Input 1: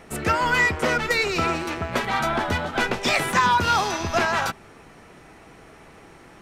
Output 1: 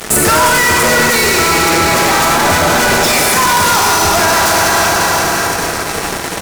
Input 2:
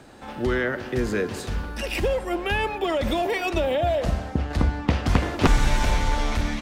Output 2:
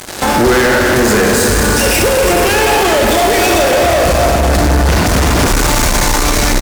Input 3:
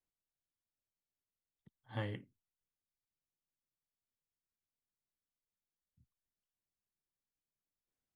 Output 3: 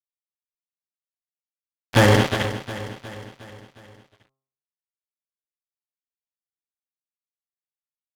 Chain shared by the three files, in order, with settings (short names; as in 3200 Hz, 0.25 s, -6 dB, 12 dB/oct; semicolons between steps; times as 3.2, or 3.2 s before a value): Schroeder reverb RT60 2.8 s, combs from 30 ms, DRR 0 dB; expander -38 dBFS; in parallel at -1 dB: upward compressor, threshold -20 dBFS; on the sum: tone controls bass -4 dB, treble +9 dB; fuzz box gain 28 dB, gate -35 dBFS; de-hum 134 Hz, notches 10; dynamic EQ 3200 Hz, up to -5 dB, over -31 dBFS, Q 1.2; on a send: feedback echo 0.36 s, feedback 54%, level -13.5 dB; on the sum: maximiser +12 dB; gain -4.5 dB